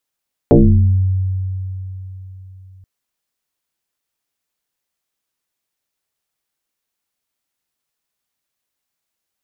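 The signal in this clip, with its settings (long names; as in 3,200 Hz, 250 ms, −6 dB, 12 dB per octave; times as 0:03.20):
two-operator FM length 2.33 s, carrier 94.2 Hz, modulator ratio 1.29, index 4.6, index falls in 0.84 s exponential, decay 3.87 s, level −4 dB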